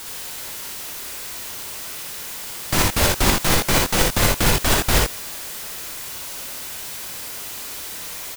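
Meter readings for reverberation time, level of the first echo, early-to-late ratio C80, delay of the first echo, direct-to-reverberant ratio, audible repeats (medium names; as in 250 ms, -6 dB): no reverb, -2.0 dB, no reverb, 58 ms, no reverb, 1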